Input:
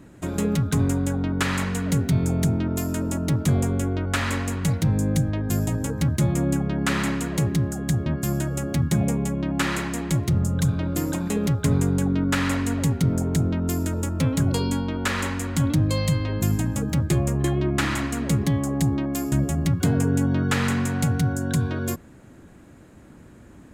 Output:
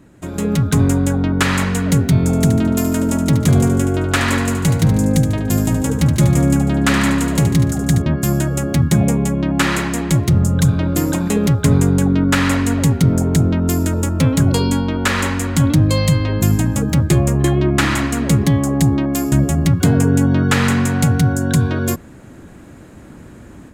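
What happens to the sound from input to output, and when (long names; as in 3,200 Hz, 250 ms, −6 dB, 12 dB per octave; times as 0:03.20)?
0:02.18–0:08.02: repeating echo 73 ms, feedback 51%, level −9 dB
whole clip: automatic gain control gain up to 9 dB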